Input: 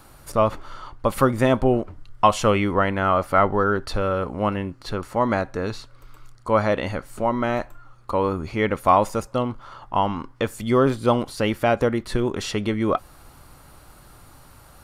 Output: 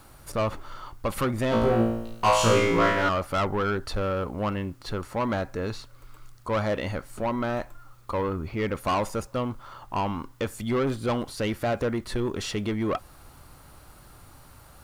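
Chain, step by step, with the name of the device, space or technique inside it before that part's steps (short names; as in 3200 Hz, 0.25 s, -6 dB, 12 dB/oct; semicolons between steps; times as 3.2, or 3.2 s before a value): 8.21–8.75 air absorption 180 m; open-reel tape (soft clip -18 dBFS, distortion -9 dB; bell 83 Hz +2.5 dB; white noise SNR 38 dB); 1.5–3.09 flutter echo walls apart 3 m, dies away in 0.79 s; gain -2.5 dB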